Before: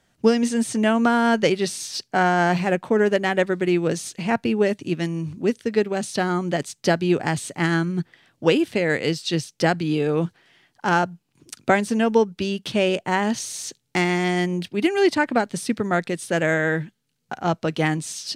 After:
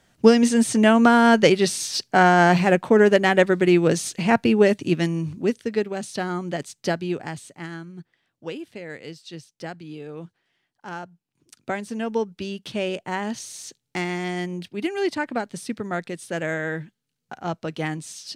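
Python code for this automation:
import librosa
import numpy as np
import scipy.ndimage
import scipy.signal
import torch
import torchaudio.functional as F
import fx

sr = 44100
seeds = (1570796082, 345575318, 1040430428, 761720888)

y = fx.gain(x, sr, db=fx.line((4.91, 3.5), (5.97, -4.5), (6.91, -4.5), (7.78, -15.0), (11.01, -15.0), (12.27, -6.0)))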